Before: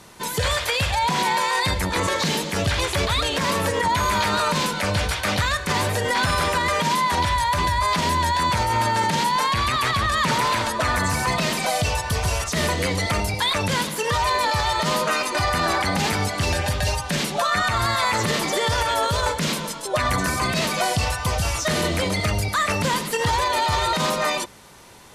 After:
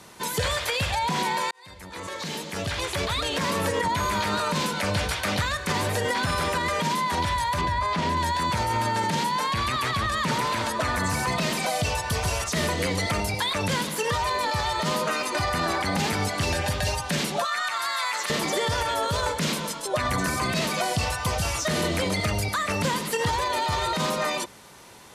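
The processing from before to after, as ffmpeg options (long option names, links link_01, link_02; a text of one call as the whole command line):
ffmpeg -i in.wav -filter_complex "[0:a]asettb=1/sr,asplit=3[link_01][link_02][link_03];[link_01]atrim=end=7.614[link_04];[link_02]atrim=start=7.61:end=8.17,asetpts=PTS-STARTPTS,afade=type=in:duration=0.004:curve=qsin,afade=type=out:start_time=0.556:duration=0.004:curve=qsin,aemphasis=mode=reproduction:type=50fm[link_05];[link_03]atrim=start=8.166[link_06];[link_04][link_05]acrossfade=duration=0.004:curve1=hsin:curve2=qsin[link_07];[link_07][link_06]acrossfade=duration=0.004:curve1=qsin:curve2=hsin,asettb=1/sr,asplit=3[link_08][link_09][link_10];[link_08]atrim=end=17.454[link_11];[link_09]atrim=start=17.45:end=18.3,asetpts=PTS-STARTPTS,afade=type=in:duration=0.004:curve=qsin,afade=type=out:start_time=0.846:duration=0.004:curve=qsin,highpass=970[link_12];[link_10]atrim=start=18.296[link_13];[link_11][link_12]acrossfade=duration=0.004:curve1=hsin:curve2=qsin[link_14];[link_14][link_13]acrossfade=duration=0.004:curve1=qsin:curve2=hsin,asplit=2[link_15][link_16];[link_15]atrim=end=1.51,asetpts=PTS-STARTPTS,afade=type=out:start_time=1.506:duration=0.004:curve=hsin[link_17];[link_16]atrim=start=1.51,asetpts=PTS-STARTPTS,afade=type=in:duration=2.08[link_18];[link_17][link_18]concat=n=2:v=0:a=1,lowshelf=frequency=61:gain=-10,acrossover=split=450[link_19][link_20];[link_20]acompressor=threshold=-24dB:ratio=3[link_21];[link_19][link_21]amix=inputs=2:normalize=0,volume=-1dB" out.wav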